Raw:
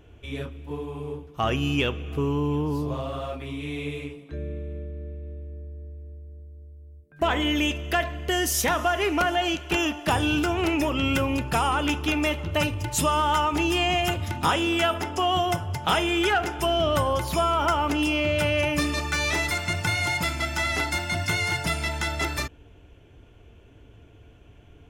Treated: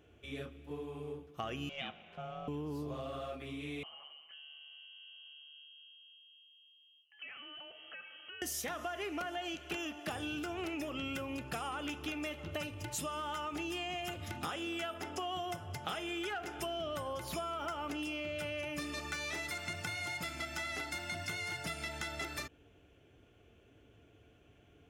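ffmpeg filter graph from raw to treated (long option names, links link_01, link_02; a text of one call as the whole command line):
ffmpeg -i in.wav -filter_complex "[0:a]asettb=1/sr,asplit=3[link_01][link_02][link_03];[link_01]atrim=end=1.694[link_04];[link_02]atrim=start=1.69:end=2.48,asetpts=PTS-STARTPTS,afade=type=in:duration=0.004:curve=qsin,afade=type=out:start_time=0.786:duration=0.004:curve=qsin,highpass=460,lowpass=3800,aeval=exprs='val(0)*sin(2*PI*270*n/s)':channel_layout=same[link_05];[link_03]atrim=start=2.476[link_06];[link_04][link_05]acrossfade=duration=0.004:curve1=hsin:curve2=qsin[link_07];[link_07][link_06]acrossfade=duration=0.004:curve1=qsin:curve2=hsin,asettb=1/sr,asplit=3[link_08][link_09][link_10];[link_08]atrim=end=3.834[link_11];[link_09]atrim=start=3.83:end=8.42,asetpts=PTS-STARTPTS,afade=type=in:duration=0.004:curve=qsin,afade=type=out:start_time=4.586:duration=0.004:curve=qsin,highpass=frequency=340:poles=1,acompressor=threshold=-43dB:ratio=3:attack=3.2:release=140:knee=1:detection=peak,lowpass=frequency=2800:width_type=q:width=0.5098,lowpass=frequency=2800:width_type=q:width=0.6013,lowpass=frequency=2800:width_type=q:width=0.9,lowpass=frequency=2800:width_type=q:width=2.563,afreqshift=-3300[link_12];[link_10]atrim=start=8.416[link_13];[link_11][link_12]acrossfade=duration=0.004:curve1=hsin:curve2=qsin[link_14];[link_14][link_13]acrossfade=duration=0.004:curve1=qsin:curve2=hsin,highpass=frequency=170:poles=1,bandreject=frequency=950:width=6.2,acompressor=threshold=-29dB:ratio=6,volume=-7.5dB" out.wav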